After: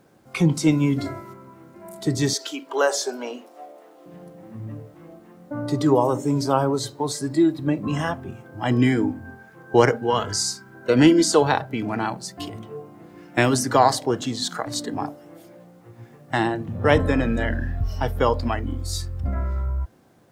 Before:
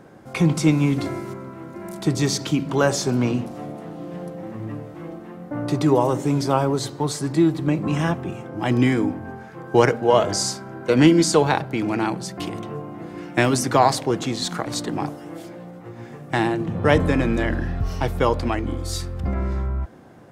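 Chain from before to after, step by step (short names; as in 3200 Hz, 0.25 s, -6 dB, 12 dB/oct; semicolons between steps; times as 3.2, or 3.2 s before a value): 2.33–4.06 HPF 370 Hz 24 dB/oct; 9.98–10.75 bell 610 Hz -14 dB 0.5 oct; spectral noise reduction 10 dB; bit-crush 11-bit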